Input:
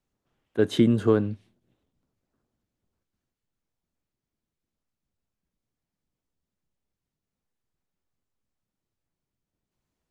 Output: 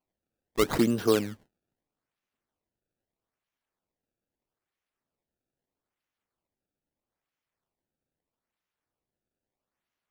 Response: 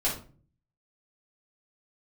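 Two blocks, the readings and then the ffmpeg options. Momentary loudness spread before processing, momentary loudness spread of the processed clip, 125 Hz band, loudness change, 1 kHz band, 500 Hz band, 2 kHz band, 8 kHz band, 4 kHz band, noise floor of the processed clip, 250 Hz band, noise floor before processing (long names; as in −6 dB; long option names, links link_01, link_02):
13 LU, 12 LU, −8.5 dB, −3.0 dB, +4.0 dB, −2.5 dB, +1.5 dB, can't be measured, +1.0 dB, below −85 dBFS, −4.5 dB, below −85 dBFS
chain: -af "aemphasis=mode=production:type=bsi,acrusher=samples=24:mix=1:aa=0.000001:lfo=1:lforange=38.4:lforate=0.78,agate=range=-14dB:threshold=-51dB:ratio=16:detection=peak"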